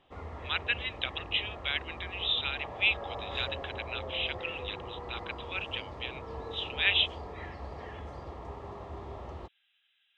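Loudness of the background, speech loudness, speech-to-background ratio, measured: -42.5 LUFS, -32.0 LUFS, 10.5 dB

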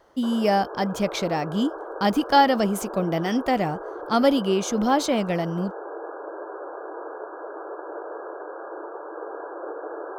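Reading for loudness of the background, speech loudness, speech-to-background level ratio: -36.0 LUFS, -23.5 LUFS, 12.5 dB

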